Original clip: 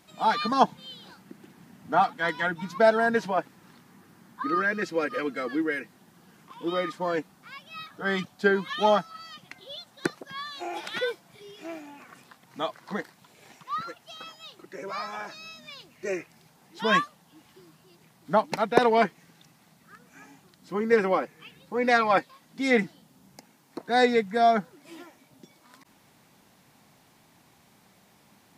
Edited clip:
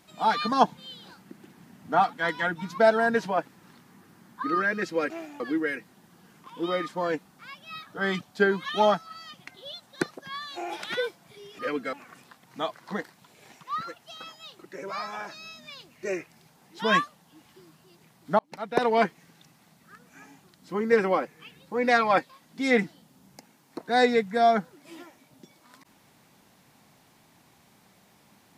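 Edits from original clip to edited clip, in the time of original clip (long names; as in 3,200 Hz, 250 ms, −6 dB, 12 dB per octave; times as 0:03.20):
0:05.10–0:05.44: swap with 0:11.63–0:11.93
0:18.39–0:19.04: fade in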